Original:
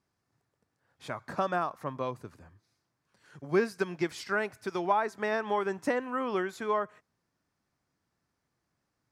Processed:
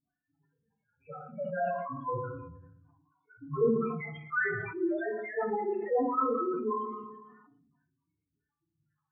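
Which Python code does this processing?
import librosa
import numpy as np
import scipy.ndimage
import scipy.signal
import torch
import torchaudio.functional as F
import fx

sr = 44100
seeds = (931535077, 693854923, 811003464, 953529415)

p1 = fx.spec_dropout(x, sr, seeds[0], share_pct=61)
p2 = scipy.signal.sosfilt(scipy.signal.butter(4, 2400.0, 'lowpass', fs=sr, output='sos'), p1)
p3 = fx.low_shelf(p2, sr, hz=180.0, db=-4.0)
p4 = np.clip(p3, -10.0 ** (-29.5 / 20.0), 10.0 ** (-29.5 / 20.0))
p5 = fx.spec_topn(p4, sr, count=2)
p6 = p5 + fx.echo_feedback(p5, sr, ms=112, feedback_pct=58, wet_db=-22, dry=0)
p7 = fx.rev_fdn(p6, sr, rt60_s=0.52, lf_ratio=1.5, hf_ratio=0.45, size_ms=20.0, drr_db=-7.0)
y = fx.sustainer(p7, sr, db_per_s=42.0)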